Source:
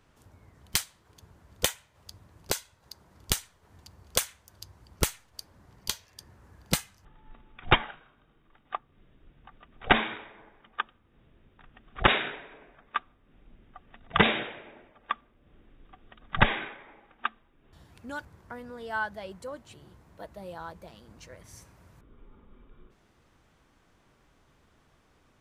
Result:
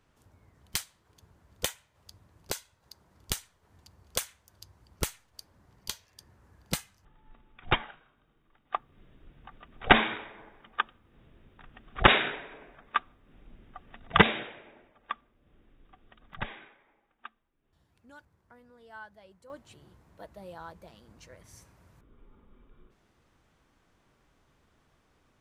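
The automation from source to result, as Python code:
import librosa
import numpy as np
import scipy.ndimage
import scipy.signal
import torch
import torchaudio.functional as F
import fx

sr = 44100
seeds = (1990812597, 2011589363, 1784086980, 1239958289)

y = fx.gain(x, sr, db=fx.steps((0.0, -5.0), (8.74, 2.5), (14.22, -4.5), (16.34, -15.0), (19.5, -3.5)))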